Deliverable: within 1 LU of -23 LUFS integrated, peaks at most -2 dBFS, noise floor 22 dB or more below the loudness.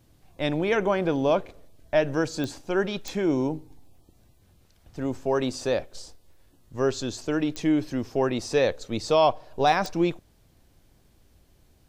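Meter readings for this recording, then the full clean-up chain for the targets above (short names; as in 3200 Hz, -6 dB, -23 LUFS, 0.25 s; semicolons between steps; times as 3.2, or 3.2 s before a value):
clicks 4; loudness -26.0 LUFS; peak -8.5 dBFS; loudness target -23.0 LUFS
-> de-click; gain +3 dB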